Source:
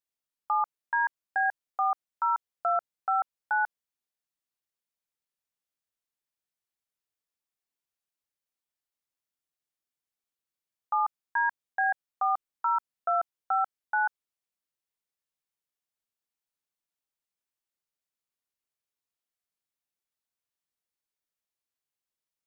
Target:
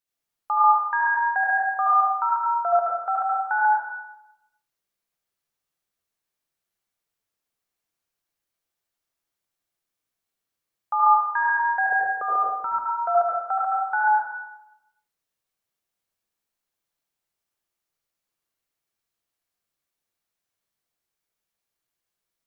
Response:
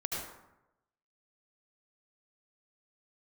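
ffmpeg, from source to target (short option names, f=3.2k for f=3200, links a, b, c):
-filter_complex "[0:a]asplit=3[a][b][c];[a]afade=t=out:st=11.91:d=0.02[d];[b]lowshelf=f=610:t=q:w=3:g=12,afade=t=in:st=11.91:d=0.02,afade=t=out:st=12.71:d=0.02[e];[c]afade=t=in:st=12.71:d=0.02[f];[d][e][f]amix=inputs=3:normalize=0[g];[1:a]atrim=start_sample=2205[h];[g][h]afir=irnorm=-1:irlink=0,volume=4dB"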